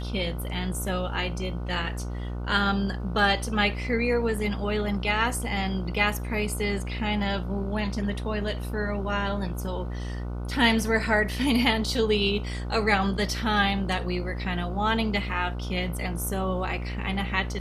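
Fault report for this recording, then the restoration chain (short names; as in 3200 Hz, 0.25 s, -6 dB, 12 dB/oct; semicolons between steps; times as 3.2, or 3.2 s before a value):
buzz 60 Hz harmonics 25 -32 dBFS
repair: de-hum 60 Hz, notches 25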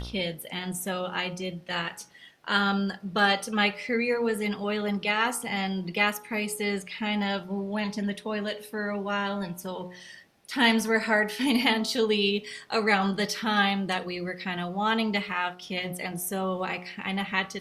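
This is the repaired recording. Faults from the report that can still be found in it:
none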